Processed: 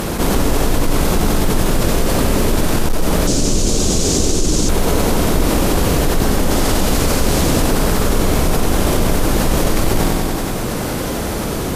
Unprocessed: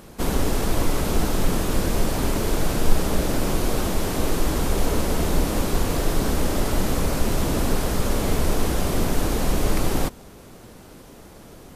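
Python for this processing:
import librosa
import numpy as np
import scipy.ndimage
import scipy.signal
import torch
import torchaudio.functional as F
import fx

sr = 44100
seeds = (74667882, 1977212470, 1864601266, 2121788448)

y = fx.peak_eq(x, sr, hz=5600.0, db=3.5, octaves=2.1, at=(6.51, 7.62))
y = fx.echo_feedback(y, sr, ms=93, feedback_pct=57, wet_db=-5.5)
y = fx.cheby_harmonics(y, sr, harmonics=(5, 7), levels_db=(-18, -22), full_scale_db=-3.0)
y = fx.curve_eq(y, sr, hz=(380.0, 890.0, 1900.0, 6800.0, 13000.0), db=(0, -9, -9, 11, -10), at=(3.27, 4.69))
y = fx.env_flatten(y, sr, amount_pct=70)
y = y * 10.0 ** (-1.5 / 20.0)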